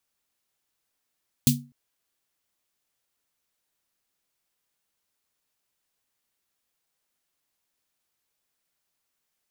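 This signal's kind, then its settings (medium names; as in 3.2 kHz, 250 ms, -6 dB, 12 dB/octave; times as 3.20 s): snare drum length 0.25 s, tones 140 Hz, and 240 Hz, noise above 3.2 kHz, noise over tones -2 dB, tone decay 0.33 s, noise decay 0.18 s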